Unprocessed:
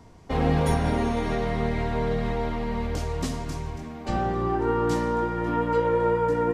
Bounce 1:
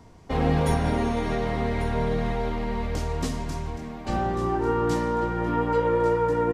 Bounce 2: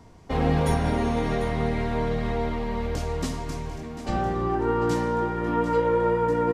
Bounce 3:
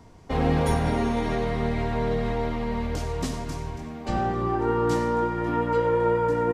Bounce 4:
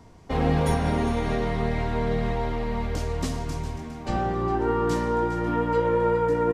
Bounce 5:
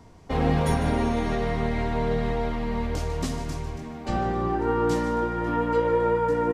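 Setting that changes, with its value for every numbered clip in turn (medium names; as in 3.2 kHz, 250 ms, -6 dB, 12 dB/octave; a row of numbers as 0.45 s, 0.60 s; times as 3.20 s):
delay, time: 1144 ms, 745 ms, 94 ms, 408 ms, 150 ms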